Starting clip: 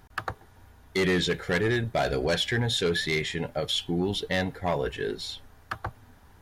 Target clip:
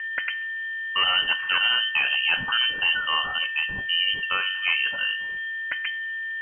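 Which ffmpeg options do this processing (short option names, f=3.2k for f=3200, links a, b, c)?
-af "aeval=exprs='val(0)+0.0282*sin(2*PI*1400*n/s)':c=same,bandreject=f=92.48:t=h:w=4,bandreject=f=184.96:t=h:w=4,bandreject=f=277.44:t=h:w=4,bandreject=f=369.92:t=h:w=4,bandreject=f=462.4:t=h:w=4,bandreject=f=554.88:t=h:w=4,bandreject=f=647.36:t=h:w=4,bandreject=f=739.84:t=h:w=4,bandreject=f=832.32:t=h:w=4,bandreject=f=924.8:t=h:w=4,bandreject=f=1.01728k:t=h:w=4,bandreject=f=1.10976k:t=h:w=4,bandreject=f=1.20224k:t=h:w=4,bandreject=f=1.29472k:t=h:w=4,bandreject=f=1.3872k:t=h:w=4,bandreject=f=1.47968k:t=h:w=4,bandreject=f=1.57216k:t=h:w=4,bandreject=f=1.66464k:t=h:w=4,bandreject=f=1.75712k:t=h:w=4,bandreject=f=1.8496k:t=h:w=4,bandreject=f=1.94208k:t=h:w=4,bandreject=f=2.03456k:t=h:w=4,bandreject=f=2.12704k:t=h:w=4,lowpass=f=2.7k:t=q:w=0.5098,lowpass=f=2.7k:t=q:w=0.6013,lowpass=f=2.7k:t=q:w=0.9,lowpass=f=2.7k:t=q:w=2.563,afreqshift=-3200,volume=3dB"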